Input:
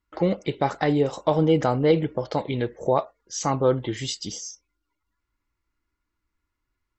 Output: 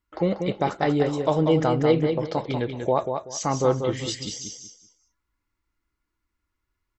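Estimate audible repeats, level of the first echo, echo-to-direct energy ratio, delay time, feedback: 3, -6.0 dB, -5.5 dB, 190 ms, 24%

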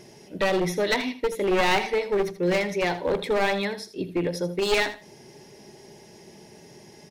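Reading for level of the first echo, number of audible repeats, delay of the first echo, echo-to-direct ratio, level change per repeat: -13.5 dB, 2, 80 ms, -13.5 dB, -14.0 dB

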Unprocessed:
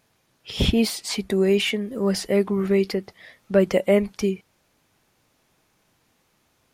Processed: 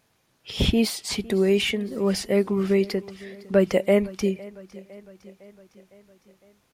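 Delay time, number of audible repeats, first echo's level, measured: 507 ms, 4, -21.0 dB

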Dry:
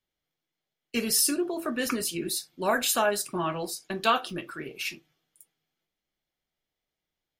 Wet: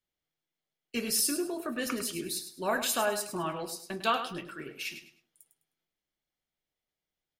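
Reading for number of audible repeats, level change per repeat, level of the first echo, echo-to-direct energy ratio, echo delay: 3, -11.5 dB, -10.0 dB, -9.5 dB, 103 ms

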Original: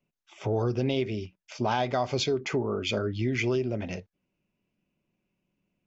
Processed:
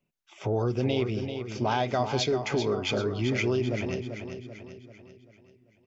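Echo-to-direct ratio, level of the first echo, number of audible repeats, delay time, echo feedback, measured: -7.0 dB, -8.0 dB, 5, 389 ms, 48%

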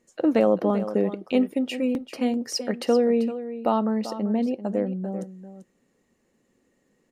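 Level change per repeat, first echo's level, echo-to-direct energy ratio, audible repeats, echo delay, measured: no regular repeats, -12.5 dB, -12.5 dB, 1, 390 ms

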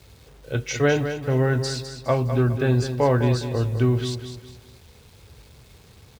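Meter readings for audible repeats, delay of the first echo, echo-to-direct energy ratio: 3, 206 ms, -9.0 dB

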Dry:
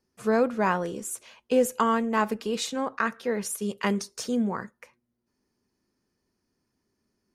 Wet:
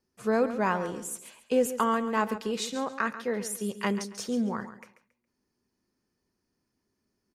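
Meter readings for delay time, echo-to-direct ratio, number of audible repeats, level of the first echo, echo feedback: 138 ms, -12.0 dB, 2, -12.5 dB, 27%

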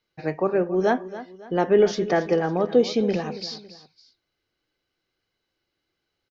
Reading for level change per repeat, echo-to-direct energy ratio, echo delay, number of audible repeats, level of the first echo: -8.0 dB, -14.5 dB, 277 ms, 2, -15.0 dB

